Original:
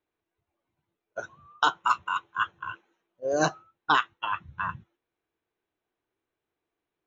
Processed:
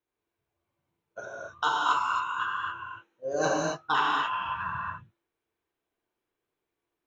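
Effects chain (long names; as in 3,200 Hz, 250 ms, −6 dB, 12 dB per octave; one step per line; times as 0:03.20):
in parallel at −9.5 dB: soft clipping −17 dBFS, distortion −13 dB
on the sum: reverb whose tail is shaped and stops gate 300 ms flat, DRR −5 dB
level −8.5 dB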